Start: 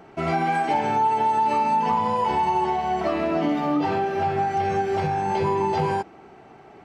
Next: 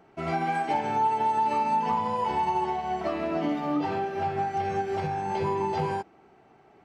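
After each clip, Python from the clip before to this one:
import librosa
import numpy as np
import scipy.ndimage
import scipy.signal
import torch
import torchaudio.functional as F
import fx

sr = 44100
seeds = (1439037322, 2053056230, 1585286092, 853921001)

y = fx.upward_expand(x, sr, threshold_db=-32.0, expansion=1.5)
y = F.gain(torch.from_numpy(y), -3.0).numpy()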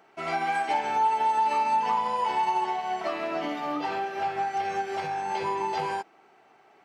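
y = fx.highpass(x, sr, hz=990.0, slope=6)
y = F.gain(torch.from_numpy(y), 4.5).numpy()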